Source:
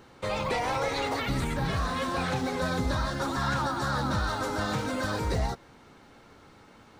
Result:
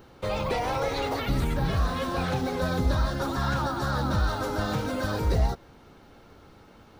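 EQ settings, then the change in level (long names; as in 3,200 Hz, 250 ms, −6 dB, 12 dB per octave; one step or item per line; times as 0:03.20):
octave-band graphic EQ 125/250/500/1,000/2,000/4,000/8,000 Hz −4/−5/−3/−6/−8/−4/−11 dB
+7.5 dB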